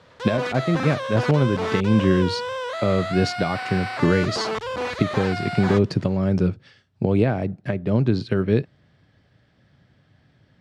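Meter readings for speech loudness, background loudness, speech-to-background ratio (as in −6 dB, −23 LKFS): −22.5 LKFS, −28.5 LKFS, 6.0 dB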